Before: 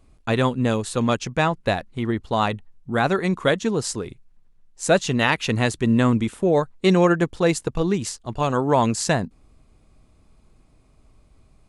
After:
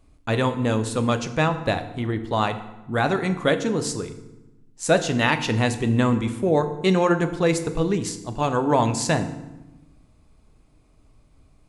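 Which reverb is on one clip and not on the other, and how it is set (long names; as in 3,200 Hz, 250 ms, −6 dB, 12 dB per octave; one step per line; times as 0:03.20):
feedback delay network reverb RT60 1 s, low-frequency decay 1.5×, high-frequency decay 0.75×, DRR 8 dB
level −1.5 dB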